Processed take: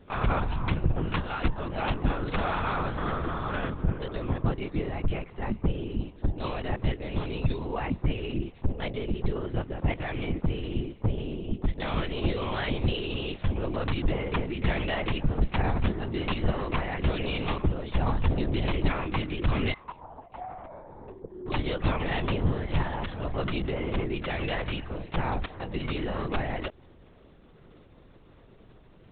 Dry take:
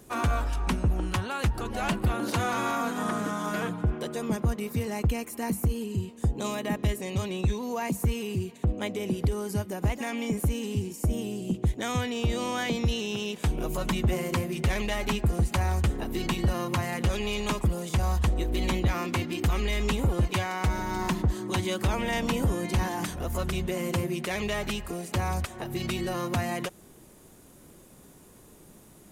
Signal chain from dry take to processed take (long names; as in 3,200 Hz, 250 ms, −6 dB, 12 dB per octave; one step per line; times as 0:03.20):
0:19.72–0:21.46: resonant band-pass 1,100 Hz → 380 Hz, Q 5.8
linear-prediction vocoder at 8 kHz whisper